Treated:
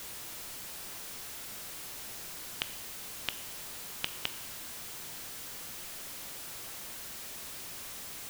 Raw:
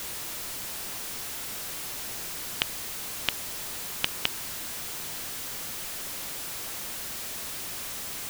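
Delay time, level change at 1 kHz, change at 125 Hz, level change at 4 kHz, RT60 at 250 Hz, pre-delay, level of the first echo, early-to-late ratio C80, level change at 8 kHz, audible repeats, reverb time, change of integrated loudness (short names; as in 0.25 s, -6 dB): none, -7.0 dB, -7.0 dB, -7.0 dB, 1.1 s, 17 ms, none, 15.0 dB, -7.0 dB, none, 1.1 s, -7.0 dB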